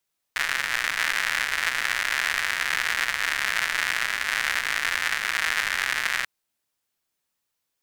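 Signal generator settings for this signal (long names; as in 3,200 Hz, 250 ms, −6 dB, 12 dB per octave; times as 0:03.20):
rain-like ticks over hiss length 5.89 s, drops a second 160, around 1,800 Hz, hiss −22.5 dB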